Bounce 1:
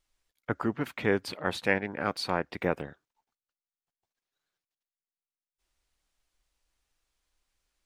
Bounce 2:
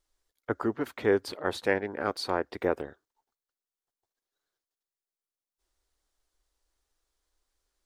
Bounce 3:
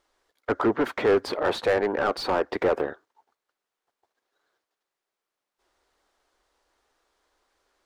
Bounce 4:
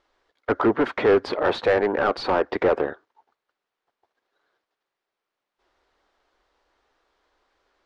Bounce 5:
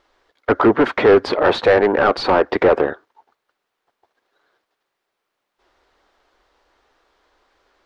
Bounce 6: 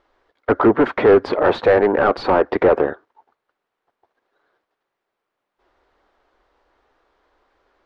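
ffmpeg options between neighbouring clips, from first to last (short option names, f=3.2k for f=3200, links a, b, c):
-af "equalizer=f=160:t=o:w=0.67:g=-10,equalizer=f=400:t=o:w=0.67:g=5,equalizer=f=2.5k:t=o:w=0.67:g=-7"
-filter_complex "[0:a]asplit=2[a][b];[b]highpass=f=720:p=1,volume=26dB,asoftclip=type=tanh:threshold=-11dB[c];[a][c]amix=inputs=2:normalize=0,lowpass=f=1k:p=1,volume=-6dB"
-af "lowpass=4.3k,volume=3dB"
-af "acontrast=89"
-af "highshelf=f=3.1k:g=-12"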